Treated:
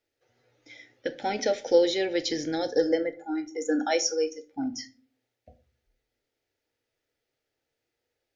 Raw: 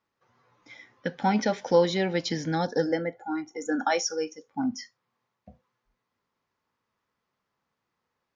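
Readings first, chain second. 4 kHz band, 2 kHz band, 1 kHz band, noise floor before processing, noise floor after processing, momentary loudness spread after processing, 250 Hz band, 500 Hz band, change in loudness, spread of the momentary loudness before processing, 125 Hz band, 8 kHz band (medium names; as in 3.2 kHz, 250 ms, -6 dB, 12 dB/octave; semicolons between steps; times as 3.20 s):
+2.0 dB, -2.0 dB, -5.0 dB, -82 dBFS, -84 dBFS, 12 LU, -1.0 dB, +1.5 dB, 0.0 dB, 11 LU, -14.0 dB, no reading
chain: static phaser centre 440 Hz, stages 4; simulated room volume 290 m³, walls furnished, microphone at 0.52 m; trim +2.5 dB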